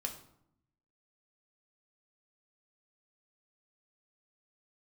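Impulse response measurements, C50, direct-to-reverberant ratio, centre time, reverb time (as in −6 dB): 10.0 dB, 2.0 dB, 14 ms, 0.70 s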